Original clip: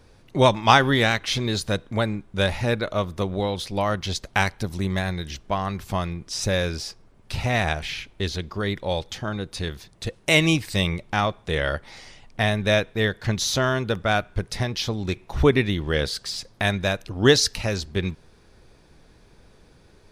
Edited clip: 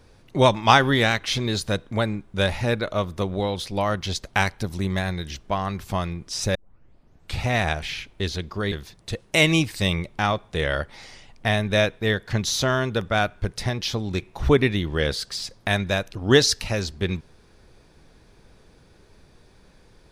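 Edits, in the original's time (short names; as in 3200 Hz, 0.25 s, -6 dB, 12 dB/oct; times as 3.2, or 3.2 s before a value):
6.55 tape start 0.87 s
8.72–9.66 cut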